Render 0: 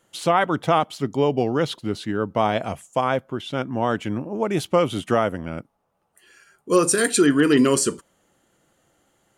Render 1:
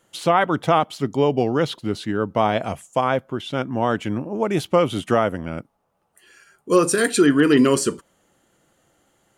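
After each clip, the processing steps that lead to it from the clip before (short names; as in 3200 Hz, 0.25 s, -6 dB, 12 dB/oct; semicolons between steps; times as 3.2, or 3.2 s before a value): dynamic EQ 8200 Hz, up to -5 dB, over -38 dBFS, Q 0.76; gain +1.5 dB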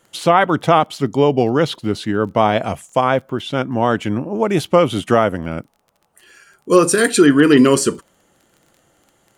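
crackle 19/s -41 dBFS; gain +4.5 dB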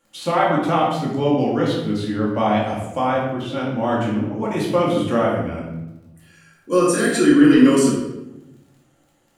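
shoebox room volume 350 m³, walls mixed, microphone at 2.3 m; gain -11 dB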